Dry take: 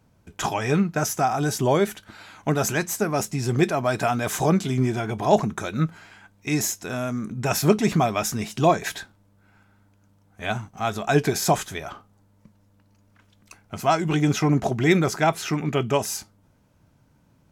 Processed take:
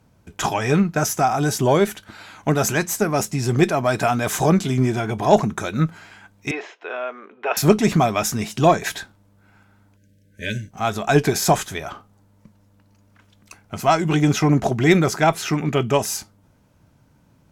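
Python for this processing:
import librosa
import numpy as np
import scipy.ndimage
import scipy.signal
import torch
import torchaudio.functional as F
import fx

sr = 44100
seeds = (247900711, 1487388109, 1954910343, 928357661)

y = fx.spec_erase(x, sr, start_s=9.97, length_s=0.74, low_hz=610.0, high_hz=1500.0)
y = fx.cheby_harmonics(y, sr, harmonics=(4,), levels_db=(-29,), full_scale_db=-4.5)
y = fx.ellip_bandpass(y, sr, low_hz=420.0, high_hz=3000.0, order=3, stop_db=60, at=(6.51, 7.57))
y = y * 10.0 ** (3.5 / 20.0)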